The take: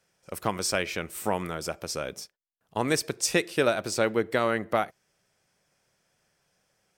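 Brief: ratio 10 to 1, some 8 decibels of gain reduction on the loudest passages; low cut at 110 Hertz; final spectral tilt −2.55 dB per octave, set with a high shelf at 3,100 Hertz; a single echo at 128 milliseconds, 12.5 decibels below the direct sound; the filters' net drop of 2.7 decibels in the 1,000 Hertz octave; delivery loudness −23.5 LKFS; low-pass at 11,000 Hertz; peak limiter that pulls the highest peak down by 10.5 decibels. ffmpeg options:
ffmpeg -i in.wav -af "highpass=110,lowpass=11000,equalizer=frequency=1000:width_type=o:gain=-4.5,highshelf=frequency=3100:gain=5,acompressor=threshold=-27dB:ratio=10,alimiter=level_in=1dB:limit=-24dB:level=0:latency=1,volume=-1dB,aecho=1:1:128:0.237,volume=13.5dB" out.wav

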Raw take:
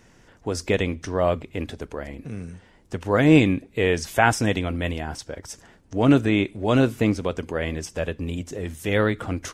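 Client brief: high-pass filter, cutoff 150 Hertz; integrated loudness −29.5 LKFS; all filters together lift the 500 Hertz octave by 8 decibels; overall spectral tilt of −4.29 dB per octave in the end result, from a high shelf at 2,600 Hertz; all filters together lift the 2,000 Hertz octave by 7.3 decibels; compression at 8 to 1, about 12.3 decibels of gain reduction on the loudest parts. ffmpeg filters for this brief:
ffmpeg -i in.wav -af "highpass=150,equalizer=frequency=500:width_type=o:gain=9,equalizer=frequency=2000:width_type=o:gain=6.5,highshelf=frequency=2600:gain=5,acompressor=threshold=-19dB:ratio=8,volume=-3.5dB" out.wav

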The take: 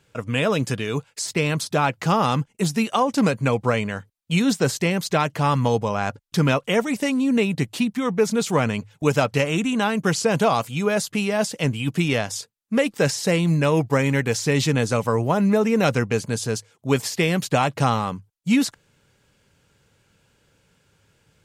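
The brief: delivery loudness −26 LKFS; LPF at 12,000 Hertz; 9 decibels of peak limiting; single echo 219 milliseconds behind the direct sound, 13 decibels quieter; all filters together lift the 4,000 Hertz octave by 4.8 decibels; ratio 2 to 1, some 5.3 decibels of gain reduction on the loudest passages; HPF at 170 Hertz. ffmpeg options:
ffmpeg -i in.wav -af "highpass=170,lowpass=12000,equalizer=frequency=4000:width_type=o:gain=6.5,acompressor=threshold=-24dB:ratio=2,alimiter=limit=-17.5dB:level=0:latency=1,aecho=1:1:219:0.224,volume=2.5dB" out.wav

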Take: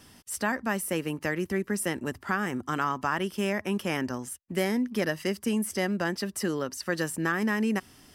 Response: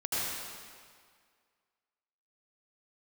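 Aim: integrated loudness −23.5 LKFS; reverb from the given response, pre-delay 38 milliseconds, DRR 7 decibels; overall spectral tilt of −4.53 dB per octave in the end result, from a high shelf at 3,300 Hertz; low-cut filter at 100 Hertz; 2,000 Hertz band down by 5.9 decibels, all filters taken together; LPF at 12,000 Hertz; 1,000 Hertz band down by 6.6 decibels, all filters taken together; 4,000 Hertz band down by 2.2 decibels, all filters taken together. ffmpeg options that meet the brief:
-filter_complex "[0:a]highpass=100,lowpass=12000,equalizer=frequency=1000:width_type=o:gain=-7.5,equalizer=frequency=2000:width_type=o:gain=-5,highshelf=frequency=3300:gain=4,equalizer=frequency=4000:width_type=o:gain=-4,asplit=2[link_01][link_02];[1:a]atrim=start_sample=2205,adelay=38[link_03];[link_02][link_03]afir=irnorm=-1:irlink=0,volume=-15dB[link_04];[link_01][link_04]amix=inputs=2:normalize=0,volume=7dB"

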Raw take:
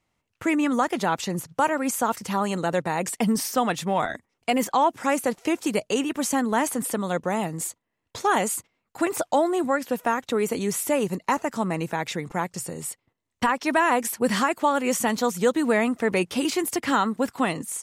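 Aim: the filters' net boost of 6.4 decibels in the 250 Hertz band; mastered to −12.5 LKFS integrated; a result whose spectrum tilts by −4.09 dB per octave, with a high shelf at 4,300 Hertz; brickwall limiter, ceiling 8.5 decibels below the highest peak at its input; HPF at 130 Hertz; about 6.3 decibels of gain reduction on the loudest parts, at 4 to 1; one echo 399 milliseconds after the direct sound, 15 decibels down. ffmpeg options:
ffmpeg -i in.wav -af "highpass=130,equalizer=frequency=250:width_type=o:gain=8,highshelf=frequency=4300:gain=6.5,acompressor=threshold=-21dB:ratio=4,alimiter=limit=-18dB:level=0:latency=1,aecho=1:1:399:0.178,volume=15dB" out.wav

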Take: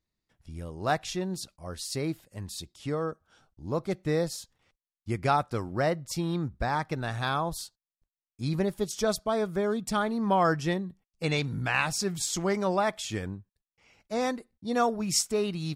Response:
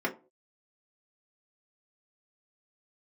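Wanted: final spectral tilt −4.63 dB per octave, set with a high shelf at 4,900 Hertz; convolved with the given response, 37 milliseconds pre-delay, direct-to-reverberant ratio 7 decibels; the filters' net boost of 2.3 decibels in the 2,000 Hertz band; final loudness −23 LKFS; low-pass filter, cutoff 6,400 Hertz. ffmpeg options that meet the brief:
-filter_complex "[0:a]lowpass=6400,equalizer=frequency=2000:width_type=o:gain=3.5,highshelf=frequency=4900:gain=-3,asplit=2[link_01][link_02];[1:a]atrim=start_sample=2205,adelay=37[link_03];[link_02][link_03]afir=irnorm=-1:irlink=0,volume=-15.5dB[link_04];[link_01][link_04]amix=inputs=2:normalize=0,volume=5.5dB"

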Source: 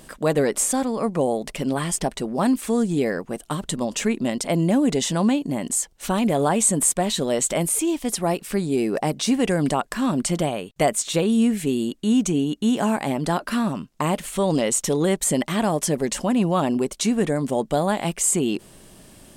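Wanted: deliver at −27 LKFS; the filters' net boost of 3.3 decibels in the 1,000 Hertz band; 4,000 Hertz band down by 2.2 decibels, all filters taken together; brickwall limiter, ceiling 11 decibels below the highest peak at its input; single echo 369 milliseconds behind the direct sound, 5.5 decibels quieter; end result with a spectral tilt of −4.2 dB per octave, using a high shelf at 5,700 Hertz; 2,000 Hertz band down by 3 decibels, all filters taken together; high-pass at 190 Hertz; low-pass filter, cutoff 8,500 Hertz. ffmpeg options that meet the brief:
ffmpeg -i in.wav -af "highpass=190,lowpass=8500,equalizer=frequency=1000:width_type=o:gain=5.5,equalizer=frequency=2000:width_type=o:gain=-5.5,equalizer=frequency=4000:width_type=o:gain=-3,highshelf=frequency=5700:gain=5,alimiter=limit=-16.5dB:level=0:latency=1,aecho=1:1:369:0.531,volume=-2dB" out.wav

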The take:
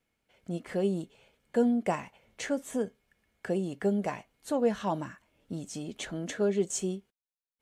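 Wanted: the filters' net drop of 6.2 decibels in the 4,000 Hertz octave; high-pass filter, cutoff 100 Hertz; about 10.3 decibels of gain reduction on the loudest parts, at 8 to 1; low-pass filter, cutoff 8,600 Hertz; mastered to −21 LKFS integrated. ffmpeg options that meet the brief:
ffmpeg -i in.wav -af "highpass=100,lowpass=8600,equalizer=frequency=4000:width_type=o:gain=-8.5,acompressor=threshold=-32dB:ratio=8,volume=18dB" out.wav

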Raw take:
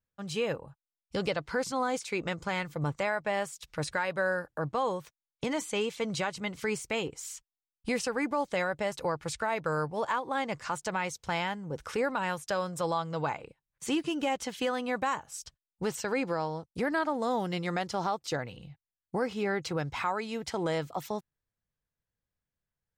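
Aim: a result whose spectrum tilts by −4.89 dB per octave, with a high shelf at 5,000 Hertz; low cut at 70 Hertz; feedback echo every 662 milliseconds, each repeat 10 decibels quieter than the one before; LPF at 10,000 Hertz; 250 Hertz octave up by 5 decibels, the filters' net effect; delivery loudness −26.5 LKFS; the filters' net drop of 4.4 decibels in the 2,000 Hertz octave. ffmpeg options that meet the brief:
ffmpeg -i in.wav -af "highpass=70,lowpass=10000,equalizer=frequency=250:width_type=o:gain=6.5,equalizer=frequency=2000:width_type=o:gain=-7,highshelf=frequency=5000:gain=6.5,aecho=1:1:662|1324|1986|2648:0.316|0.101|0.0324|0.0104,volume=4.5dB" out.wav

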